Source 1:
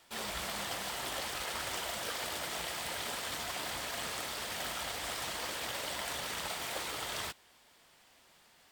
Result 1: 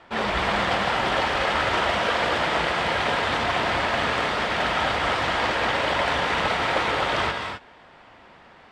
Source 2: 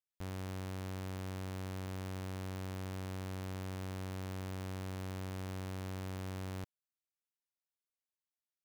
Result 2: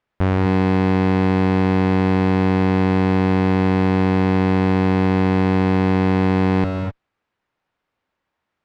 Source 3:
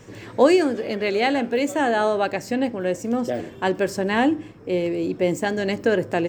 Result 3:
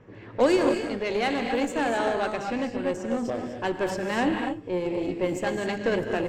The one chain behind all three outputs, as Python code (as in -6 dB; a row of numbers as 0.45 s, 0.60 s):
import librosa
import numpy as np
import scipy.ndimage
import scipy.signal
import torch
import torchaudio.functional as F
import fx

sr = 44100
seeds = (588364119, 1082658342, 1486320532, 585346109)

y = fx.env_lowpass(x, sr, base_hz=1800.0, full_db=-17.5)
y = fx.rev_gated(y, sr, seeds[0], gate_ms=280, shape='rising', drr_db=4.0)
y = fx.cheby_harmonics(y, sr, harmonics=(8,), levels_db=(-24,), full_scale_db=-3.5)
y = librosa.util.normalize(y) * 10.0 ** (-9 / 20.0)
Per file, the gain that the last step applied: +16.5 dB, +25.5 dB, -6.0 dB